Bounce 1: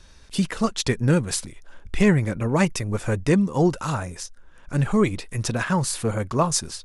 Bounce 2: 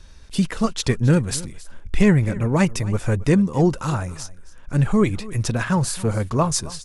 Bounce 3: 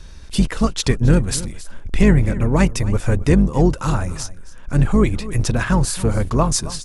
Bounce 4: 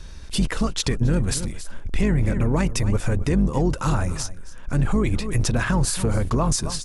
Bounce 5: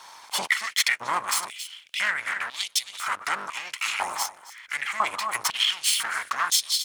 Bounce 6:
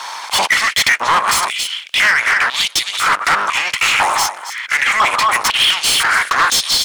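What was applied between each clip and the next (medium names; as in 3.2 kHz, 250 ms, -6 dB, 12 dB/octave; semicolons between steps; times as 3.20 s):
bass shelf 160 Hz +6.5 dB; delay 270 ms -19 dB
octave divider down 2 oct, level -1 dB; in parallel at +0.5 dB: compression, threshold -24 dBFS, peak gain reduction 15 dB; on the sum: trim -1 dB
peak limiter -12 dBFS, peak gain reduction 10 dB
comb filter that takes the minimum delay 0.92 ms; step-sequenced high-pass 2 Hz 870–3600 Hz; trim +3 dB
overdrive pedal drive 24 dB, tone 4.7 kHz, clips at -7 dBFS; trim +3 dB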